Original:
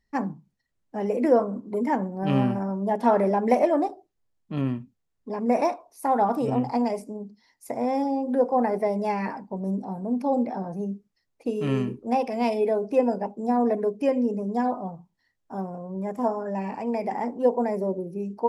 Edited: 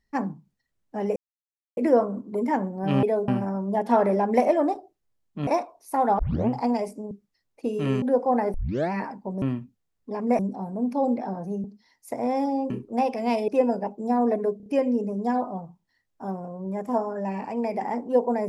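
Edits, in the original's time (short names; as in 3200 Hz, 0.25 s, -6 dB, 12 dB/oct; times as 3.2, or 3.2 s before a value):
1.16 insert silence 0.61 s
4.61–5.58 move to 9.68
6.3 tape start 0.30 s
7.22–8.28 swap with 10.93–11.84
8.8 tape start 0.38 s
12.62–12.87 move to 2.42
13.96 stutter 0.03 s, 4 plays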